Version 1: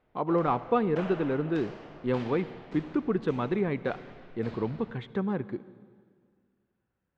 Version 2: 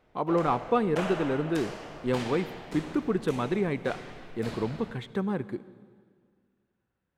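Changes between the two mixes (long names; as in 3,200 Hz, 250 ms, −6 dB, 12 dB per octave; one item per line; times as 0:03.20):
background +5.0 dB
master: remove high-frequency loss of the air 160 metres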